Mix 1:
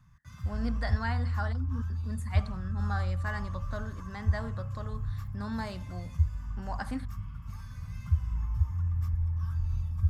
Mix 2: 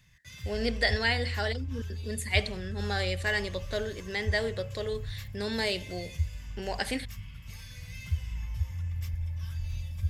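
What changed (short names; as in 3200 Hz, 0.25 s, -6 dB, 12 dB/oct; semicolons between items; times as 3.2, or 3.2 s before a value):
background -4.0 dB; master: remove EQ curve 260 Hz 0 dB, 410 Hz -17 dB, 1200 Hz +7 dB, 2000 Hz -15 dB, 3000 Hz -19 dB, 5700 Hz -14 dB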